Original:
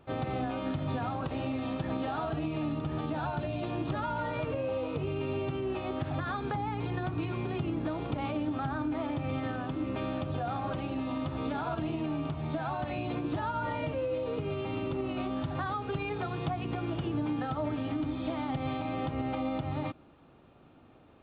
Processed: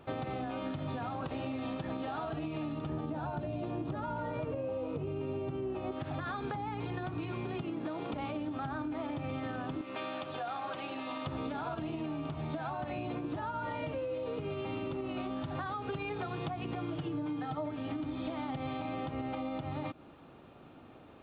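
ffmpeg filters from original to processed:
ffmpeg -i in.wav -filter_complex "[0:a]asettb=1/sr,asplit=3[link_01][link_02][link_03];[link_01]atrim=end=2.894[link_04];[link_02]atrim=start=2.89:end=5.92,asetpts=PTS-STARTPTS,afade=type=in:duration=0.004:curve=qsin,afade=type=out:start_time=3.026:duration=0.004:curve=qsin,tiltshelf=frequency=1200:gain=5.5[link_05];[link_03]atrim=start=5.916[link_06];[link_04][link_05]acrossfade=duration=0.004:curve1=hsin:curve2=qsin[link_07];[link_07][link_06]acrossfade=duration=0.004:curve1=qsin:curve2=hsin,asettb=1/sr,asplit=3[link_08][link_09][link_10];[link_08]atrim=end=7.614[link_11];[link_09]atrim=start=7.61:end=8.14,asetpts=PTS-STARTPTS,afade=type=in:duration=0.004:curve=qsin,afade=type=out:start_time=0.526:duration=0.004:curve=qsin,highpass=160[link_12];[link_10]atrim=start=8.136[link_13];[link_11][link_12]acrossfade=duration=0.004:curve1=hsin:curve2=qsin[link_14];[link_14][link_13]acrossfade=duration=0.004:curve1=qsin:curve2=hsin,asettb=1/sr,asplit=3[link_15][link_16][link_17];[link_15]atrim=end=9.814[link_18];[link_16]atrim=start=9.81:end=11.27,asetpts=PTS-STARTPTS,afade=type=in:duration=0.004:curve=qsin,afade=type=out:start_time=1.456:duration=0.004:curve=qsin,highpass=frequency=950:poles=1[link_19];[link_17]atrim=start=11.266[link_20];[link_18][link_19]acrossfade=duration=0.004:curve1=hsin:curve2=qsin[link_21];[link_21][link_20]acrossfade=duration=0.004:curve1=qsin:curve2=hsin,asettb=1/sr,asplit=3[link_22][link_23][link_24];[link_22]atrim=end=12.704[link_25];[link_23]atrim=start=12.7:end=13.59,asetpts=PTS-STARTPTS,afade=type=in:duration=0.004:curve=qsin,afade=type=out:start_time=0.886:duration=0.004:curve=qsin,highshelf=frequency=3700:gain=-7.5[link_26];[link_24]atrim=start=13.586[link_27];[link_25][link_26]acrossfade=duration=0.004:curve1=hsin:curve2=qsin[link_28];[link_28][link_27]acrossfade=duration=0.004:curve1=qsin:curve2=hsin,asettb=1/sr,asplit=3[link_29][link_30][link_31];[link_29]atrim=end=16.764[link_32];[link_30]atrim=start=16.76:end=17.71,asetpts=PTS-STARTPTS,afade=type=in:duration=0.004:curve=qsin,afade=type=out:start_time=0.946:duration=0.004:curve=qsin,aecho=1:1:6.6:0.65,atrim=end_sample=41895[link_33];[link_31]atrim=start=17.706[link_34];[link_32][link_33]acrossfade=duration=0.004:curve1=hsin:curve2=qsin[link_35];[link_35][link_34]acrossfade=duration=0.004:curve1=qsin:curve2=hsin,lowshelf=frequency=97:gain=-6.5,acompressor=threshold=-39dB:ratio=6,volume=4.5dB" out.wav

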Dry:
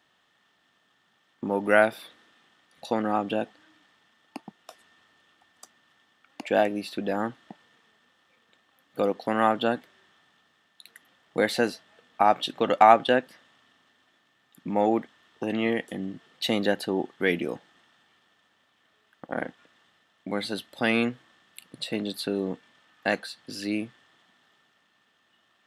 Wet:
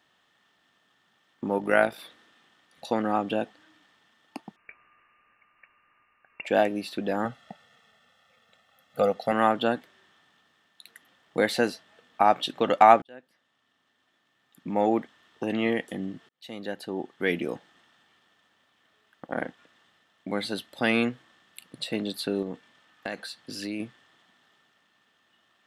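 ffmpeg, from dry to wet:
ffmpeg -i in.wav -filter_complex "[0:a]asettb=1/sr,asplit=3[link_01][link_02][link_03];[link_01]atrim=end=1.584[link_04];[link_02]atrim=start=1.58:end=1.99,asetpts=PTS-STARTPTS,afade=type=in:duration=0.004:curve=qsin,afade=type=out:start_time=0.406:duration=0.004:curve=qsin,tremolo=f=52:d=0.519[link_05];[link_03]atrim=start=1.986[link_06];[link_04][link_05]acrossfade=duration=0.004:curve1=hsin:curve2=qsin[link_07];[link_07][link_06]acrossfade=duration=0.004:curve1=qsin:curve2=hsin,asettb=1/sr,asplit=3[link_08][link_09][link_10];[link_08]atrim=end=4.564[link_11];[link_09]atrim=start=4.56:end=6.45,asetpts=PTS-STARTPTS,afade=type=in:duration=0.004:curve=qsin,afade=type=out:start_time=1.886:duration=0.004:curve=qsin,lowpass=frequency=2600:width_type=q:width=0.5098,lowpass=frequency=2600:width_type=q:width=0.6013,lowpass=frequency=2600:width_type=q:width=0.9,lowpass=frequency=2600:width_type=q:width=2.563,afreqshift=-3000[link_12];[link_10]atrim=start=6.446[link_13];[link_11][link_12]acrossfade=duration=0.004:curve1=hsin:curve2=qsin[link_14];[link_14][link_13]acrossfade=duration=0.004:curve1=qsin:curve2=hsin,asettb=1/sr,asplit=3[link_15][link_16][link_17];[link_15]atrim=end=7.254[link_18];[link_16]atrim=start=7.25:end=9.32,asetpts=PTS-STARTPTS,afade=type=in:duration=0.004:curve=qsin,afade=type=out:start_time=2.066:duration=0.004:curve=qsin,aecho=1:1:1.5:0.8,atrim=end_sample=91287[link_19];[link_17]atrim=start=9.316[link_20];[link_18][link_19]acrossfade=duration=0.004:curve1=hsin:curve2=qsin[link_21];[link_21][link_20]acrossfade=duration=0.004:curve1=qsin:curve2=hsin,asettb=1/sr,asplit=3[link_22][link_23][link_24];[link_22]atrim=end=22.424[link_25];[link_23]atrim=start=22.42:end=23.8,asetpts=PTS-STARTPTS,afade=type=in:duration=0.004:curve=qsin,afade=type=out:start_time=1.376:duration=0.004:curve=qsin,acompressor=threshold=-29dB:ratio=4:attack=3.2:release=140:knee=1:detection=peak[link_26];[link_24]atrim=start=23.796[link_27];[link_25][link_26]acrossfade=duration=0.004:curve1=hsin:curve2=qsin[link_28];[link_28][link_27]acrossfade=duration=0.004:curve1=qsin:curve2=hsin,asplit=3[link_29][link_30][link_31];[link_29]atrim=end=13.02,asetpts=PTS-STARTPTS,afade=type=out:start_time=13.016:duration=0.004:curve=hsin[link_32];[link_30]atrim=start=13.02:end=16.29,asetpts=PTS-STARTPTS,afade=type=in:duration=1.96,afade=type=out:start_time=3.266:duration=0.004:curve=hsin[link_33];[link_31]atrim=start=16.29,asetpts=PTS-STARTPTS,afade=type=in:duration=1.23[link_34];[link_32][link_33][link_34]concat=n=3:v=0:a=1" out.wav

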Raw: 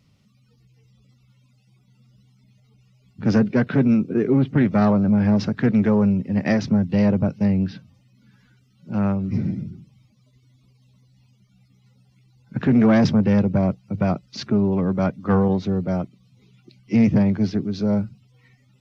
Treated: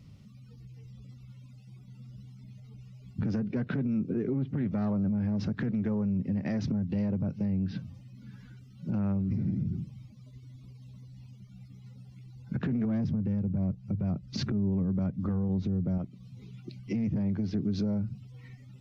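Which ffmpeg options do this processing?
ffmpeg -i in.wav -filter_complex "[0:a]asettb=1/sr,asplit=3[link_01][link_02][link_03];[link_01]atrim=end=12.854[link_04];[link_02]atrim=start=12.85:end=15.98,asetpts=PTS-STARTPTS,afade=type=in:duration=0.004:curve=qsin,afade=type=out:start_time=3.126:duration=0.004:curve=qsin,lowshelf=frequency=290:gain=10[link_05];[link_03]atrim=start=15.976[link_06];[link_04][link_05]acrossfade=duration=0.004:curve1=hsin:curve2=qsin[link_07];[link_07][link_06]acrossfade=duration=0.004:curve1=qsin:curve2=hsin,lowshelf=frequency=300:gain=10.5,acompressor=threshold=-20dB:ratio=5,alimiter=limit=-23dB:level=0:latency=1:release=126" out.wav

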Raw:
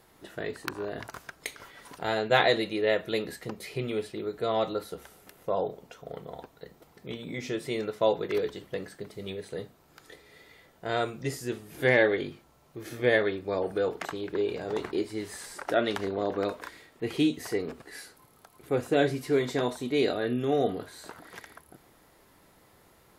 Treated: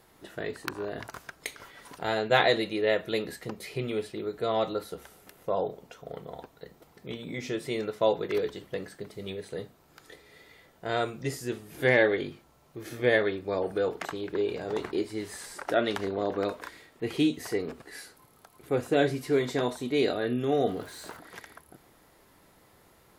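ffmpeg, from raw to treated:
ffmpeg -i in.wav -filter_complex "[0:a]asettb=1/sr,asplit=3[link_01][link_02][link_03];[link_01]atrim=end=20.674[link_04];[link_02]atrim=start=20.67:end=21.17,asetpts=PTS-STARTPTS,afade=type=in:duration=0.004:curve=qsin,afade=type=out:start_time=0.496:duration=0.004:curve=qsin,aeval=exprs='val(0)+0.5*0.00376*sgn(val(0))':channel_layout=same[link_05];[link_03]atrim=start=21.166[link_06];[link_04][link_05]acrossfade=duration=0.004:curve1=hsin:curve2=qsin[link_07];[link_07][link_06]acrossfade=duration=0.004:curve1=qsin:curve2=hsin" out.wav

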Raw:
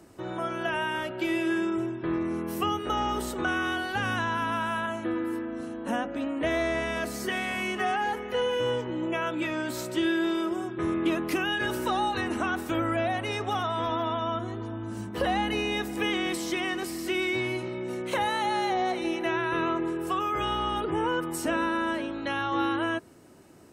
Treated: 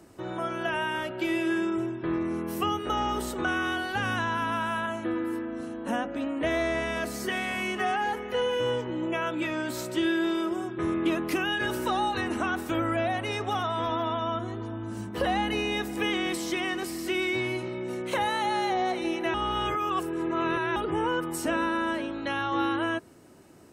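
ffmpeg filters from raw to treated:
ffmpeg -i in.wav -filter_complex "[0:a]asplit=3[link_01][link_02][link_03];[link_01]atrim=end=19.342[link_04];[link_02]atrim=start=19.338:end=20.762,asetpts=PTS-STARTPTS,areverse[link_05];[link_03]atrim=start=20.758[link_06];[link_04][link_05]acrossfade=duration=0.004:curve1=hsin:curve2=hsin[link_07];[link_07][link_06]acrossfade=duration=0.004:curve1=hsin:curve2=hsin" out.wav

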